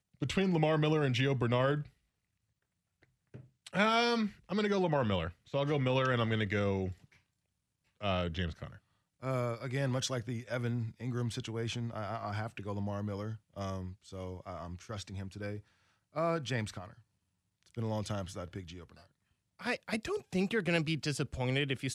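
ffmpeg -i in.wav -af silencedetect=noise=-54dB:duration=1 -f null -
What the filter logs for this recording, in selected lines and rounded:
silence_start: 1.89
silence_end: 3.03 | silence_duration: 1.14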